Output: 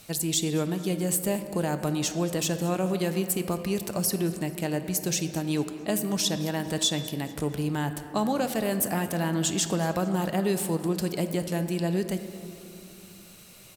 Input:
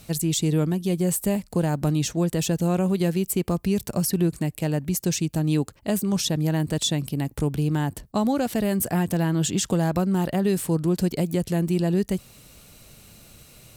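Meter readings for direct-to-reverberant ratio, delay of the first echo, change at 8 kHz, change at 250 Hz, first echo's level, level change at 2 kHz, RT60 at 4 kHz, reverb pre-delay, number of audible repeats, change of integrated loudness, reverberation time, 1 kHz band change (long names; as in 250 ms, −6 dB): 8.0 dB, 222 ms, 0.0 dB, −5.0 dB, −20.0 dB, +0.5 dB, 1.4 s, 5 ms, 3, −3.5 dB, 2.5 s, −0.5 dB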